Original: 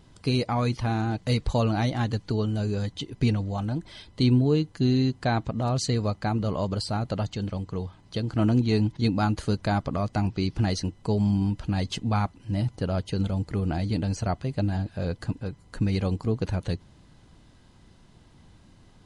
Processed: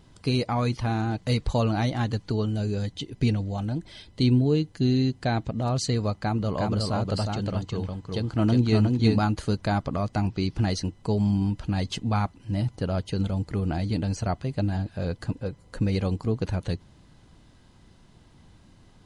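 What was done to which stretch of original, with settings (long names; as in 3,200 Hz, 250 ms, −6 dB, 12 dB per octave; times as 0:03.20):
0:02.49–0:05.66: parametric band 1,100 Hz −5 dB
0:06.20–0:09.19: single-tap delay 360 ms −3 dB
0:15.29–0:16.01: parametric band 520 Hz +8.5 dB 0.32 octaves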